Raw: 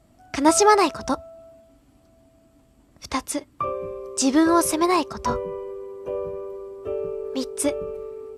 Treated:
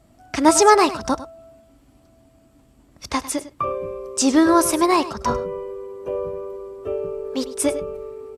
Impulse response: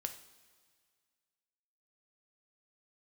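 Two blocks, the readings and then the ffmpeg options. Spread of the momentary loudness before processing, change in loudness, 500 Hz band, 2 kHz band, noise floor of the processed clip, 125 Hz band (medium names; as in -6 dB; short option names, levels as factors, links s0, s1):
17 LU, +2.5 dB, +2.5 dB, +2.5 dB, -55 dBFS, +2.5 dB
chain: -af "aecho=1:1:101:0.178,volume=1.33"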